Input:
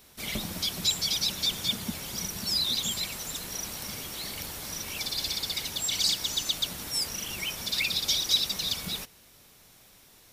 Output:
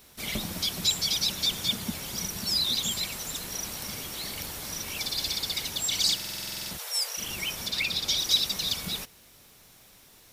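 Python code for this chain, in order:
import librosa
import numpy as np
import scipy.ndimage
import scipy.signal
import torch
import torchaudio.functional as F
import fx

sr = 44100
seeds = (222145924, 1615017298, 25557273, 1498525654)

y = fx.steep_highpass(x, sr, hz=450.0, slope=72, at=(6.77, 7.17), fade=0.02)
y = fx.high_shelf(y, sr, hz=fx.line((7.67, 5000.0), (8.17, 8100.0)), db=-6.5, at=(7.67, 8.17), fade=0.02)
y = fx.quant_dither(y, sr, seeds[0], bits=12, dither='triangular')
y = fx.buffer_glitch(y, sr, at_s=(6.15,), block=2048, repeats=11)
y = F.gain(torch.from_numpy(y), 1.0).numpy()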